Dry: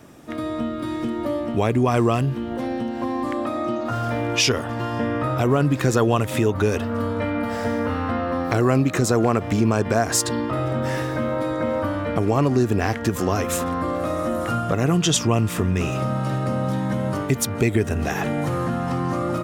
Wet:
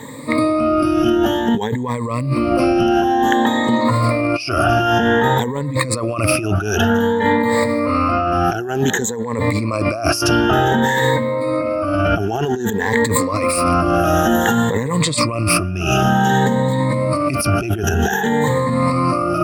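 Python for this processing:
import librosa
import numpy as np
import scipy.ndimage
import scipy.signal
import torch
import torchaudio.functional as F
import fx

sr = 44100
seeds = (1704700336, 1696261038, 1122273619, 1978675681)

y = fx.spec_ripple(x, sr, per_octave=1.0, drift_hz=0.54, depth_db=23)
y = fx.low_shelf(y, sr, hz=360.0, db=-4.0)
y = fx.over_compress(y, sr, threshold_db=-24.0, ratio=-1.0)
y = y * 10.0 ** (6.5 / 20.0)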